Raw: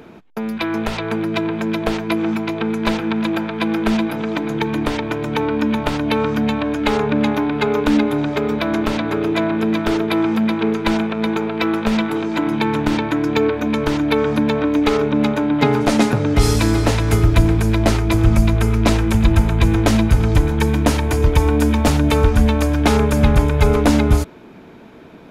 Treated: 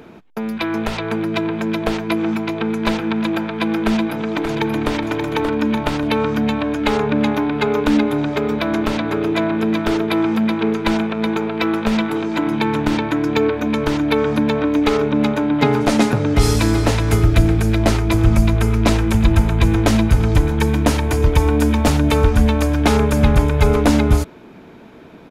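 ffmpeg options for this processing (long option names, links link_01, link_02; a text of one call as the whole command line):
ffmpeg -i in.wav -filter_complex "[0:a]asplit=2[link_01][link_02];[link_02]afade=type=in:start_time=3.78:duration=0.01,afade=type=out:start_time=4.91:duration=0.01,aecho=0:1:580|1160|1740|2320:0.501187|0.150356|0.0451069|0.0135321[link_03];[link_01][link_03]amix=inputs=2:normalize=0,asettb=1/sr,asplit=3[link_04][link_05][link_06];[link_04]atrim=end=17.234[link_07];[link_05]atrim=start=17.23:end=17.79,asetpts=PTS-STARTPTS,afade=type=in:duration=0.004:curve=qsin,afade=type=out:start_time=0.556:duration=0.004:curve=qsin,bandreject=frequency=1000:width=12[link_08];[link_06]atrim=start=17.786[link_09];[link_07][link_08]acrossfade=duration=0.004:curve1=hsin:curve2=qsin[link_10];[link_10][link_09]acrossfade=duration=0.004:curve1=qsin:curve2=hsin" out.wav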